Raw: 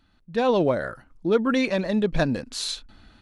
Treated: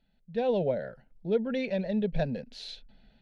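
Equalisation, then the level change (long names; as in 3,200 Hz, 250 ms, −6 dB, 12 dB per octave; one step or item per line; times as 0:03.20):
high-frequency loss of the air 310 metres
high-shelf EQ 6,400 Hz +9 dB
phaser with its sweep stopped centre 310 Hz, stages 6
−4.0 dB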